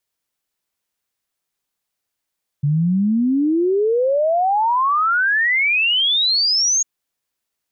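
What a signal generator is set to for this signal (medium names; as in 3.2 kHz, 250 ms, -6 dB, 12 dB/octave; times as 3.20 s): log sweep 140 Hz -> 6.7 kHz 4.20 s -14 dBFS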